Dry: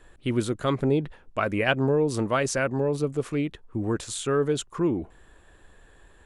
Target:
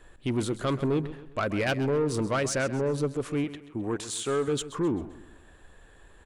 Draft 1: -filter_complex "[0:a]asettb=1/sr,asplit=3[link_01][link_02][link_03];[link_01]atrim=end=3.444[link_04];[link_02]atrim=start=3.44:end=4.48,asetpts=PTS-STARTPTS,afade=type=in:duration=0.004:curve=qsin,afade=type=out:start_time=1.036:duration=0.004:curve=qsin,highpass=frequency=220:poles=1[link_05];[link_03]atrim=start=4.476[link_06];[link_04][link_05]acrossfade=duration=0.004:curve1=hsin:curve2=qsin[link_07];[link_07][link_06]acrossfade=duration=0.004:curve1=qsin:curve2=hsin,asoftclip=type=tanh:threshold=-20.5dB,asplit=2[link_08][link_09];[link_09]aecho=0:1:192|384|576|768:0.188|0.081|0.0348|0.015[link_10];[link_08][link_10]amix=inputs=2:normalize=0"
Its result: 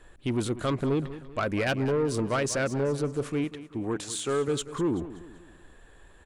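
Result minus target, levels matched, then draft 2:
echo 61 ms late
-filter_complex "[0:a]asettb=1/sr,asplit=3[link_01][link_02][link_03];[link_01]atrim=end=3.444[link_04];[link_02]atrim=start=3.44:end=4.48,asetpts=PTS-STARTPTS,afade=type=in:duration=0.004:curve=qsin,afade=type=out:start_time=1.036:duration=0.004:curve=qsin,highpass=frequency=220:poles=1[link_05];[link_03]atrim=start=4.476[link_06];[link_04][link_05]acrossfade=duration=0.004:curve1=hsin:curve2=qsin[link_07];[link_07][link_06]acrossfade=duration=0.004:curve1=qsin:curve2=hsin,asoftclip=type=tanh:threshold=-20.5dB,asplit=2[link_08][link_09];[link_09]aecho=0:1:131|262|393|524:0.188|0.081|0.0348|0.015[link_10];[link_08][link_10]amix=inputs=2:normalize=0"

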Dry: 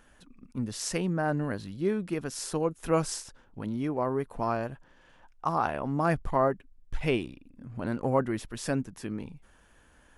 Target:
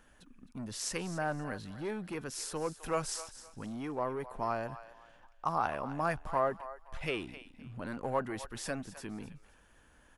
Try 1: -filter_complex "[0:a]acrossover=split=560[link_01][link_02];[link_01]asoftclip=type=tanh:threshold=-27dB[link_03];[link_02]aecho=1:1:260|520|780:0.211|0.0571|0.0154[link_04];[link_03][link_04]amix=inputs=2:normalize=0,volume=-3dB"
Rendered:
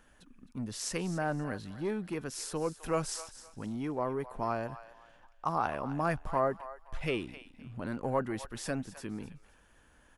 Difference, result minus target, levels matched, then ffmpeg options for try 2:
soft clipping: distortion −6 dB
-filter_complex "[0:a]acrossover=split=560[link_01][link_02];[link_01]asoftclip=type=tanh:threshold=-34.5dB[link_03];[link_02]aecho=1:1:260|520|780:0.211|0.0571|0.0154[link_04];[link_03][link_04]amix=inputs=2:normalize=0,volume=-3dB"

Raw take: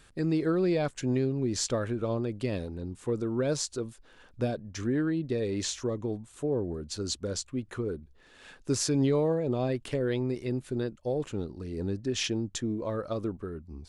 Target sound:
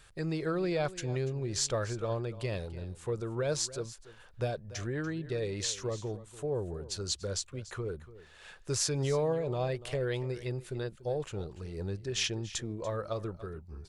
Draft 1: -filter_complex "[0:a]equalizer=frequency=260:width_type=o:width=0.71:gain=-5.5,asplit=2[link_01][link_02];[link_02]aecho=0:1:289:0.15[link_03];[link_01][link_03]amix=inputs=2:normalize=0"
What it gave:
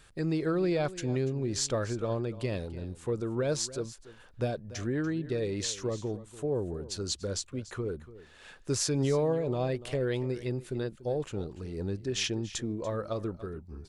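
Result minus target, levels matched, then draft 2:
250 Hz band +3.5 dB
-filter_complex "[0:a]equalizer=frequency=260:width_type=o:width=0.71:gain=-15.5,asplit=2[link_01][link_02];[link_02]aecho=0:1:289:0.15[link_03];[link_01][link_03]amix=inputs=2:normalize=0"

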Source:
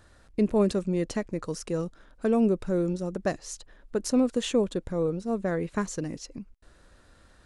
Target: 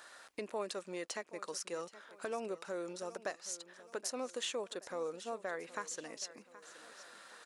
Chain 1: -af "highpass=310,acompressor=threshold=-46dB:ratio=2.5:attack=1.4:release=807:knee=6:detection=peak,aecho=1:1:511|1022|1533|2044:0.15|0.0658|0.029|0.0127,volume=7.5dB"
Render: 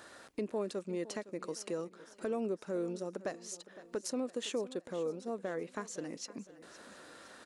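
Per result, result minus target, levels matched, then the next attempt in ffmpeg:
echo 263 ms early; 250 Hz band +6.5 dB
-af "highpass=310,acompressor=threshold=-46dB:ratio=2.5:attack=1.4:release=807:knee=6:detection=peak,aecho=1:1:774|1548|2322|3096:0.15|0.0658|0.029|0.0127,volume=7.5dB"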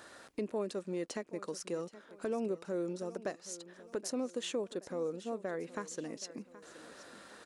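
250 Hz band +6.5 dB
-af "highpass=770,acompressor=threshold=-46dB:ratio=2.5:attack=1.4:release=807:knee=6:detection=peak,aecho=1:1:774|1548|2322|3096:0.15|0.0658|0.029|0.0127,volume=7.5dB"

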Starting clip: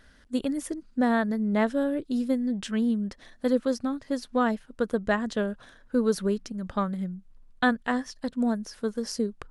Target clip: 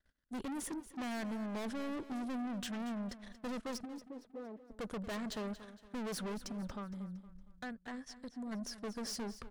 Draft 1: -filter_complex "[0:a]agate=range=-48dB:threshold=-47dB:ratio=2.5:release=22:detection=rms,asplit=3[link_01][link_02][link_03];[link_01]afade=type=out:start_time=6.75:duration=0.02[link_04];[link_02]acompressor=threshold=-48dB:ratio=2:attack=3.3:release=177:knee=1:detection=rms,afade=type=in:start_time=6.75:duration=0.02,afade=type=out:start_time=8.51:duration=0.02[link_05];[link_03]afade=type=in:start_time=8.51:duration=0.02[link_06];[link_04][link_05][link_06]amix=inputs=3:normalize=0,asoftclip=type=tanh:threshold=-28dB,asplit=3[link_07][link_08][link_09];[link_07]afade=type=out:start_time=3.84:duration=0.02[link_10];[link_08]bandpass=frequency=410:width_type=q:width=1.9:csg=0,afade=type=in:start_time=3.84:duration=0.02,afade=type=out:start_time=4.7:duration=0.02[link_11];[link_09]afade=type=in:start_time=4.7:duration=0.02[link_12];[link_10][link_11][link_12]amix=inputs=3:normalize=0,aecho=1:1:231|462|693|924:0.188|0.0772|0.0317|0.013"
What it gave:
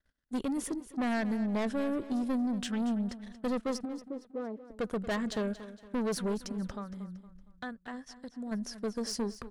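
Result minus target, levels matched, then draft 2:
soft clipping: distortion −5 dB
-filter_complex "[0:a]agate=range=-48dB:threshold=-47dB:ratio=2.5:release=22:detection=rms,asplit=3[link_01][link_02][link_03];[link_01]afade=type=out:start_time=6.75:duration=0.02[link_04];[link_02]acompressor=threshold=-48dB:ratio=2:attack=3.3:release=177:knee=1:detection=rms,afade=type=in:start_time=6.75:duration=0.02,afade=type=out:start_time=8.51:duration=0.02[link_05];[link_03]afade=type=in:start_time=8.51:duration=0.02[link_06];[link_04][link_05][link_06]amix=inputs=3:normalize=0,asoftclip=type=tanh:threshold=-38.5dB,asplit=3[link_07][link_08][link_09];[link_07]afade=type=out:start_time=3.84:duration=0.02[link_10];[link_08]bandpass=frequency=410:width_type=q:width=1.9:csg=0,afade=type=in:start_time=3.84:duration=0.02,afade=type=out:start_time=4.7:duration=0.02[link_11];[link_09]afade=type=in:start_time=4.7:duration=0.02[link_12];[link_10][link_11][link_12]amix=inputs=3:normalize=0,aecho=1:1:231|462|693|924:0.188|0.0772|0.0317|0.013"

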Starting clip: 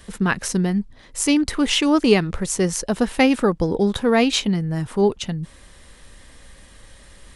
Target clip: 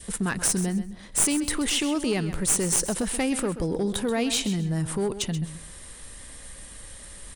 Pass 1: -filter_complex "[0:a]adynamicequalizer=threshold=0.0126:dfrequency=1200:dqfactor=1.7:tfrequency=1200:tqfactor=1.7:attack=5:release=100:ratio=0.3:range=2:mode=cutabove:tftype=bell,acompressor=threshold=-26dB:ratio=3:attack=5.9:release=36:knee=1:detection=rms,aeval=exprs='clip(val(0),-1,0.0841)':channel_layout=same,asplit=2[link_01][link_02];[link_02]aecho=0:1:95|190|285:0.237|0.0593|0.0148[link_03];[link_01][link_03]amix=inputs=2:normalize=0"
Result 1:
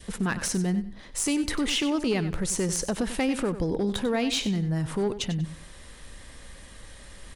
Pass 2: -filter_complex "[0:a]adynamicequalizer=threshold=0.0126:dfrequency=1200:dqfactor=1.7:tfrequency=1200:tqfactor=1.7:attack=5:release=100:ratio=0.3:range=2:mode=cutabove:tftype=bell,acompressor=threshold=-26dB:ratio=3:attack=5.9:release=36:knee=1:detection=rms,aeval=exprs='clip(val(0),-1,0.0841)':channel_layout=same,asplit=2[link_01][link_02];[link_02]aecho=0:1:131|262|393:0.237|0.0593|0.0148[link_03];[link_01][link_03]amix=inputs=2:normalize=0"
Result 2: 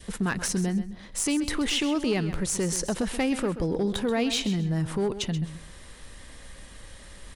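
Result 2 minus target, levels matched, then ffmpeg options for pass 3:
8,000 Hz band −5.0 dB
-filter_complex "[0:a]adynamicequalizer=threshold=0.0126:dfrequency=1200:dqfactor=1.7:tfrequency=1200:tqfactor=1.7:attack=5:release=100:ratio=0.3:range=2:mode=cutabove:tftype=bell,acompressor=threshold=-26dB:ratio=3:attack=5.9:release=36:knee=1:detection=rms,equalizer=frequency=9100:width_type=o:width=0.71:gain=12,aeval=exprs='clip(val(0),-1,0.0841)':channel_layout=same,asplit=2[link_01][link_02];[link_02]aecho=0:1:131|262|393:0.237|0.0593|0.0148[link_03];[link_01][link_03]amix=inputs=2:normalize=0"

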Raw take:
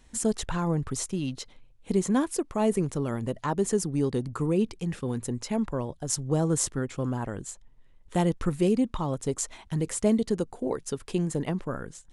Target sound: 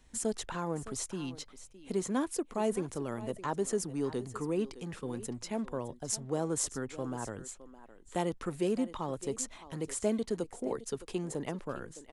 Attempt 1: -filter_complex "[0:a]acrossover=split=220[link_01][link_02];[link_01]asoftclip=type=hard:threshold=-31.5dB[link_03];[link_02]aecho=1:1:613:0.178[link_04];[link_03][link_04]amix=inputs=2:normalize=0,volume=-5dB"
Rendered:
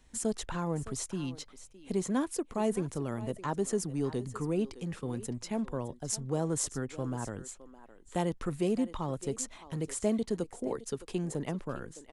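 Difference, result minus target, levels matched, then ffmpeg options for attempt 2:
hard clipping: distortion −7 dB
-filter_complex "[0:a]acrossover=split=220[link_01][link_02];[link_01]asoftclip=type=hard:threshold=-41dB[link_03];[link_02]aecho=1:1:613:0.178[link_04];[link_03][link_04]amix=inputs=2:normalize=0,volume=-5dB"

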